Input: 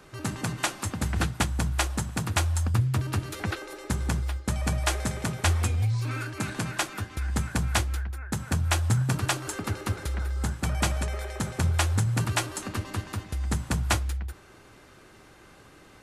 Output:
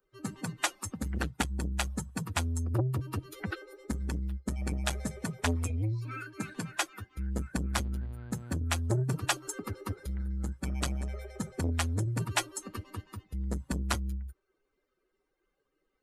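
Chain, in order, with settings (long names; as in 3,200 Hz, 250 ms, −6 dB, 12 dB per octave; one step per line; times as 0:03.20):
spectral dynamics exaggerated over time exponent 2
0:07.70–0:08.54: hum with harmonics 120 Hz, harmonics 40, −46 dBFS −9 dB per octave
saturating transformer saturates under 540 Hz
level +1.5 dB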